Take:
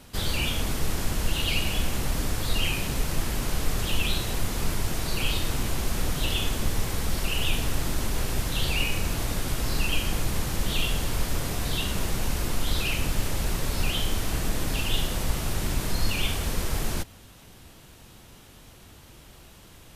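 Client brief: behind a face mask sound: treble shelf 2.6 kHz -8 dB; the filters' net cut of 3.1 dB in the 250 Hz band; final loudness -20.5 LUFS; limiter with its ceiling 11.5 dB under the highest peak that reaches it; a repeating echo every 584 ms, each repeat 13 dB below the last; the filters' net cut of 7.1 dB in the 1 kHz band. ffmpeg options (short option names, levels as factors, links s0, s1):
-af "equalizer=f=250:t=o:g=-4,equalizer=f=1000:t=o:g=-8,alimiter=limit=0.0708:level=0:latency=1,highshelf=f=2600:g=-8,aecho=1:1:584|1168|1752:0.224|0.0493|0.0108,volume=6.31"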